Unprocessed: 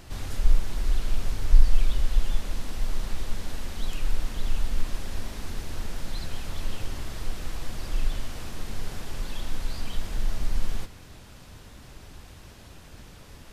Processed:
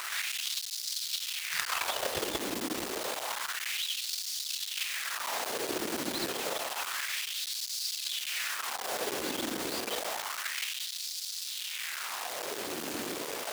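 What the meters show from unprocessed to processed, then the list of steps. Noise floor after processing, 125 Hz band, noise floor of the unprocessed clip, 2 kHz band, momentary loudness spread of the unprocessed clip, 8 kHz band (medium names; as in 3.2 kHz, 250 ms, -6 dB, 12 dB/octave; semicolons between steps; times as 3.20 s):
-39 dBFS, -21.5 dB, -47 dBFS, +8.5 dB, 19 LU, no reading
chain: in parallel at +2 dB: compression 20:1, threshold -31 dBFS, peak gain reduction 25.5 dB; on the sum: Chebyshev shaper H 7 -9 dB, 8 -43 dB, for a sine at -2.5 dBFS; bit crusher 6-bit; LFO high-pass sine 0.29 Hz 300–4700 Hz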